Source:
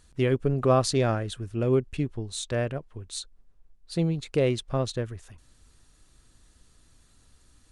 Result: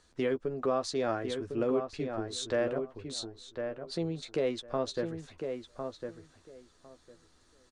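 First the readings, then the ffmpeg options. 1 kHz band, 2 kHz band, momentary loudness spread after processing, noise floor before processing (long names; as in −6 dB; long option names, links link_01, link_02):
−5.0 dB, −4.0 dB, 9 LU, −61 dBFS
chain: -filter_complex "[0:a]equalizer=frequency=2700:width_type=o:width=0.68:gain=-5,asplit=2[link_01][link_02];[link_02]adelay=12,volume=-7.5dB[link_03];[link_01][link_03]amix=inputs=2:normalize=0,alimiter=limit=-19.5dB:level=0:latency=1:release=473,acrossover=split=250 7100:gain=0.224 1 0.126[link_04][link_05][link_06];[link_04][link_05][link_06]amix=inputs=3:normalize=0,asplit=2[link_07][link_08];[link_08]adelay=1054,lowpass=frequency=2100:poles=1,volume=-6dB,asplit=2[link_09][link_10];[link_10]adelay=1054,lowpass=frequency=2100:poles=1,volume=0.16,asplit=2[link_11][link_12];[link_12]adelay=1054,lowpass=frequency=2100:poles=1,volume=0.16[link_13];[link_07][link_09][link_11][link_13]amix=inputs=4:normalize=0"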